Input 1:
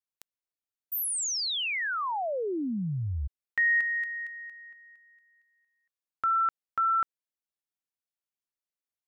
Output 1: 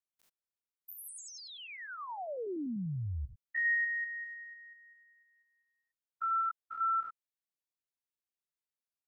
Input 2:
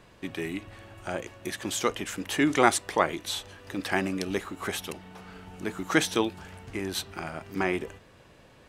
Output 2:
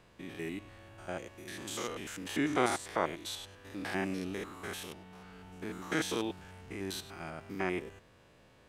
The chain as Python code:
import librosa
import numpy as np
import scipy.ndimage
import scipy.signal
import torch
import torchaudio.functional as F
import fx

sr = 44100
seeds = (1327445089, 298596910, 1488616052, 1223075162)

y = fx.spec_steps(x, sr, hold_ms=100)
y = y * librosa.db_to_amplitude(-5.0)